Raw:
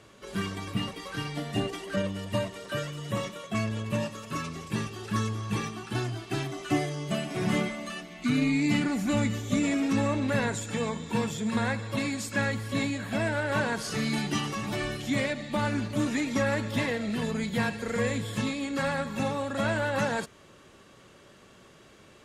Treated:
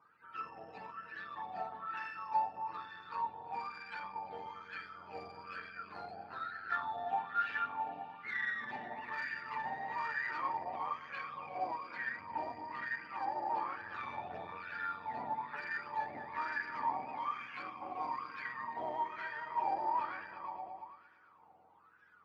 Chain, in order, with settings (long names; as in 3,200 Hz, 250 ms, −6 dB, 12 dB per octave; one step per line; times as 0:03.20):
frequency axis turned over on the octave scale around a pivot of 720 Hz
on a send: echo whose low-pass opens from repeat to repeat 114 ms, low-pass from 200 Hz, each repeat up 2 octaves, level −3 dB
on the sum: tube saturation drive 23 dB, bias 0.6
LFO wah 1.1 Hz 730–1,600 Hz, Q 8.1
level +8 dB